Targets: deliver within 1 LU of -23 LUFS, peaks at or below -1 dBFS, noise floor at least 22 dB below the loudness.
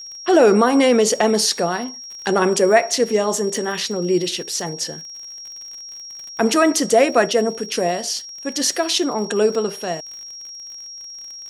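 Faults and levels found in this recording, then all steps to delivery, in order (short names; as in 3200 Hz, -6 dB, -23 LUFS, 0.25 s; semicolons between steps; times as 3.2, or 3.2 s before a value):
ticks 57/s; steady tone 5600 Hz; tone level -33 dBFS; loudness -18.5 LUFS; peak -3.0 dBFS; loudness target -23.0 LUFS
-> de-click; notch 5600 Hz, Q 30; gain -4.5 dB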